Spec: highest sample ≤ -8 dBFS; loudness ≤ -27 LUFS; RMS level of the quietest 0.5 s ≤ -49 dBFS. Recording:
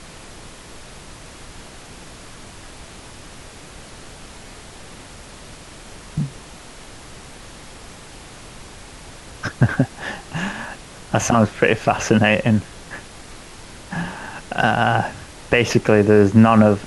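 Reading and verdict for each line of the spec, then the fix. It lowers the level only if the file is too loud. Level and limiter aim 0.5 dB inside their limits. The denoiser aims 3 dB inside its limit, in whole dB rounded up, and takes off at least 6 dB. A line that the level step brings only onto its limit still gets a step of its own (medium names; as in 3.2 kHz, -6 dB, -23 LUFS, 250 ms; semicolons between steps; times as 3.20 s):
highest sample -1.5 dBFS: fail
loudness -18.5 LUFS: fail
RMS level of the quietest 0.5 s -39 dBFS: fail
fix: noise reduction 6 dB, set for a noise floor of -39 dBFS; trim -9 dB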